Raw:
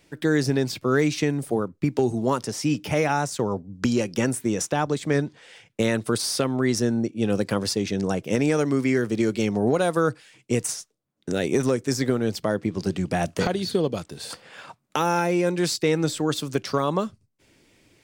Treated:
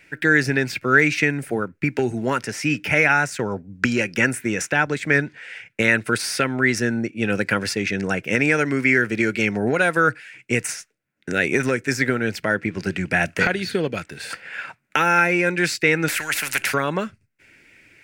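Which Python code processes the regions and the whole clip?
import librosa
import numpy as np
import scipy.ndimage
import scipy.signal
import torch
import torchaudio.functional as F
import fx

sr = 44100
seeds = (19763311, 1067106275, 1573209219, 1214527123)

y = fx.chain(x, sr, fx.peak_eq(hz=10000.0, db=15.0, octaves=0.51),
    fx.spectral_comp(ratio=4.0), at=(16.08, 16.74))
y = fx.band_shelf(y, sr, hz=1900.0, db=14.0, octaves=1.2)
y = fx.notch(y, sr, hz=1200.0, q=8.8)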